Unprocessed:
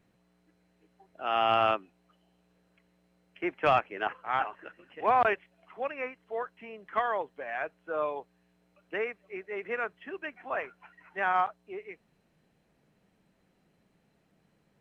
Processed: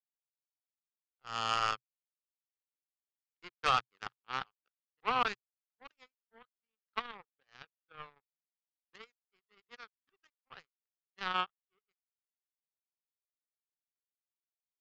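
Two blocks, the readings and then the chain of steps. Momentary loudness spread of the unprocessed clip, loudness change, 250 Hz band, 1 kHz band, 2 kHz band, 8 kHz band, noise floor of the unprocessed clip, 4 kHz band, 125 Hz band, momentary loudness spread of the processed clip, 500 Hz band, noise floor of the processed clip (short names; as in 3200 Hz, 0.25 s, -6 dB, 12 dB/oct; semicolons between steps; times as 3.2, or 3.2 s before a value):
17 LU, -4.0 dB, -11.5 dB, -8.0 dB, -7.5 dB, n/a, -71 dBFS, +1.0 dB, -5.5 dB, 22 LU, -16.5 dB, under -85 dBFS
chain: power-law curve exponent 3; thirty-one-band EQ 125 Hz +4 dB, 315 Hz -9 dB, 630 Hz -12 dB, 1250 Hz +6 dB, 3150 Hz +4 dB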